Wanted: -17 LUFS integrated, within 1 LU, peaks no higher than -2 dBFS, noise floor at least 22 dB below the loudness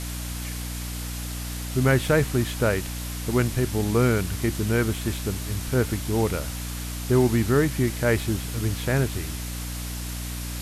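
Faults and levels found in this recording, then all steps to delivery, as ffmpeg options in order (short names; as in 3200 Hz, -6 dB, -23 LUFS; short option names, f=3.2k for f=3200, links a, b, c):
hum 60 Hz; harmonics up to 300 Hz; hum level -31 dBFS; noise floor -32 dBFS; noise floor target -48 dBFS; loudness -25.5 LUFS; peak -8.0 dBFS; loudness target -17.0 LUFS
-> -af "bandreject=f=60:t=h:w=6,bandreject=f=120:t=h:w=6,bandreject=f=180:t=h:w=6,bandreject=f=240:t=h:w=6,bandreject=f=300:t=h:w=6"
-af "afftdn=nr=16:nf=-32"
-af "volume=8.5dB,alimiter=limit=-2dB:level=0:latency=1"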